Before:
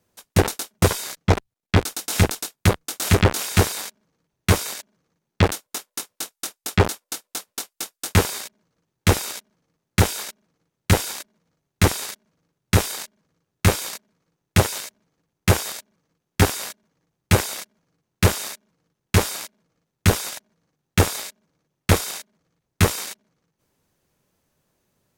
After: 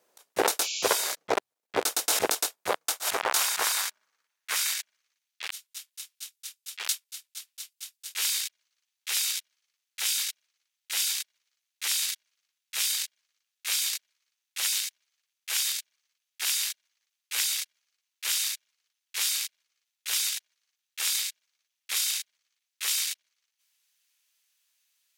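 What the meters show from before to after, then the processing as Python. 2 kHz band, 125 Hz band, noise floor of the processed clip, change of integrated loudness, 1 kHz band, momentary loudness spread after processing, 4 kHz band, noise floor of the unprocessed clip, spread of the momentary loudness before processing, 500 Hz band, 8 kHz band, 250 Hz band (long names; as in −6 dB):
−6.5 dB, below −40 dB, −85 dBFS, −5.0 dB, −7.5 dB, 15 LU, −0.5 dB, −82 dBFS, 14 LU, −10.5 dB, −0.5 dB, below −20 dB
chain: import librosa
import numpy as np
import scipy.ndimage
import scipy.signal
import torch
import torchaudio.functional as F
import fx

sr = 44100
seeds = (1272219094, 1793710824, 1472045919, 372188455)

y = fx.filter_sweep_highpass(x, sr, from_hz=490.0, to_hz=2800.0, start_s=2.35, end_s=5.32, q=1.2)
y = fx.auto_swell(y, sr, attack_ms=102.0)
y = fx.spec_paint(y, sr, seeds[0], shape='noise', start_s=0.61, length_s=0.28, low_hz=2200.0, high_hz=7400.0, level_db=-35.0)
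y = F.gain(torch.from_numpy(y), 2.0).numpy()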